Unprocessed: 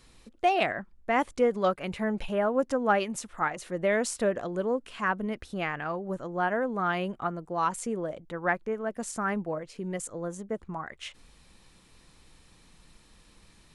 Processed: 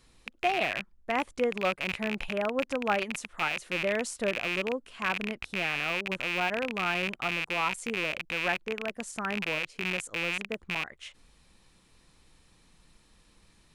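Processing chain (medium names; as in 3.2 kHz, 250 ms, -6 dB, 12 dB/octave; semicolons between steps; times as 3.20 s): rattle on loud lows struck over -48 dBFS, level -15 dBFS; trim -4 dB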